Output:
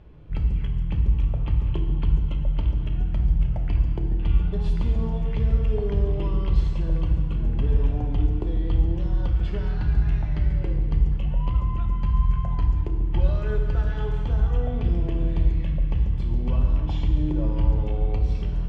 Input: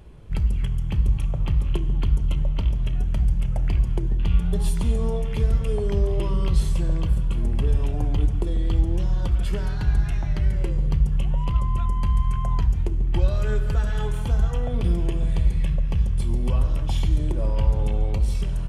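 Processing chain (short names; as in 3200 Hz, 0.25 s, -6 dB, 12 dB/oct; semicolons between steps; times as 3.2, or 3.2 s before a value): air absorption 190 m; FDN reverb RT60 1.7 s, low-frequency decay 1.3×, high-frequency decay 0.95×, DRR 4.5 dB; gain -2.5 dB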